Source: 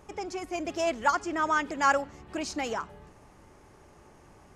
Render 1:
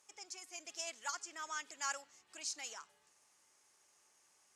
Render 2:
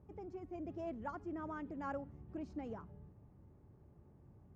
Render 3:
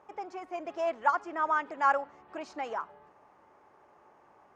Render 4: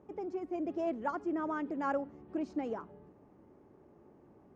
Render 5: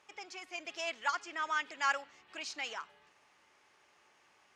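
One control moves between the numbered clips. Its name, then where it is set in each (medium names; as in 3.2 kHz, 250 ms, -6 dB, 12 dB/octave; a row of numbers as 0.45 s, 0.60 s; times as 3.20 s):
band-pass filter, frequency: 7.7 kHz, 110 Hz, 920 Hz, 290 Hz, 3 kHz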